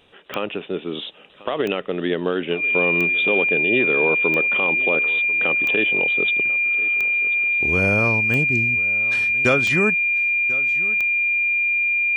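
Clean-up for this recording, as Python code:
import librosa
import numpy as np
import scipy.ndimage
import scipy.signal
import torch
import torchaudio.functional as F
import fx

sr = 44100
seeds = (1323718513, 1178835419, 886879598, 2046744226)

y = fx.fix_declick_ar(x, sr, threshold=10.0)
y = fx.notch(y, sr, hz=2400.0, q=30.0)
y = fx.fix_echo_inverse(y, sr, delay_ms=1042, level_db=-19.0)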